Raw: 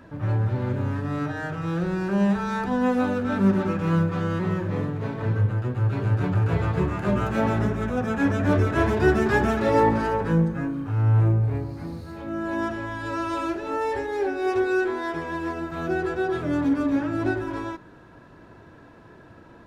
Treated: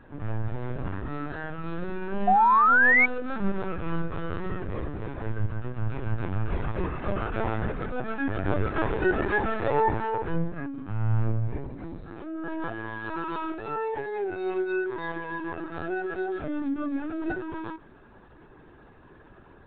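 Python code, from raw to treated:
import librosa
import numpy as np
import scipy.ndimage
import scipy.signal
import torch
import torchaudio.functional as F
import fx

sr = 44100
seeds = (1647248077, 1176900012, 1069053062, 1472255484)

y = fx.lpc_vocoder(x, sr, seeds[0], excitation='pitch_kept', order=16)
y = fx.spec_paint(y, sr, seeds[1], shape='rise', start_s=2.27, length_s=0.79, low_hz=710.0, high_hz=2300.0, level_db=-15.0)
y = fx.dynamic_eq(y, sr, hz=220.0, q=1.2, threshold_db=-34.0, ratio=4.0, max_db=-5)
y = y * 10.0 ** (-3.5 / 20.0)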